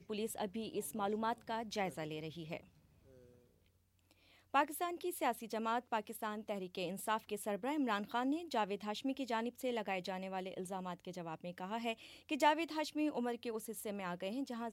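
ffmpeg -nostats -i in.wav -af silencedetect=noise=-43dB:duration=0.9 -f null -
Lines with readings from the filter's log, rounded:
silence_start: 2.57
silence_end: 4.54 | silence_duration: 1.97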